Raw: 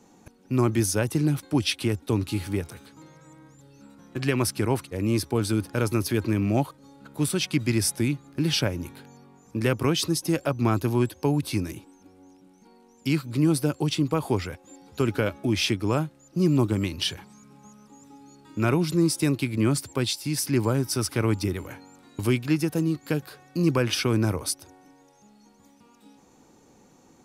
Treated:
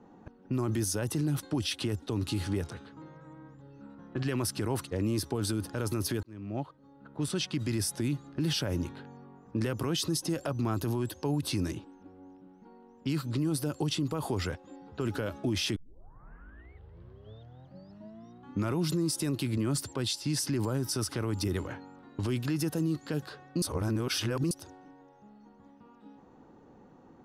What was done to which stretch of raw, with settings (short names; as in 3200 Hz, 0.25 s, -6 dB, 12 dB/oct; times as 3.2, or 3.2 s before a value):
6.23–8.52 fade in equal-power
15.76 tape start 3.01 s
23.62–24.51 reverse
whole clip: low-pass opened by the level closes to 1800 Hz, open at -21 dBFS; bell 2300 Hz -9 dB 0.22 oct; limiter -23 dBFS; gain +1 dB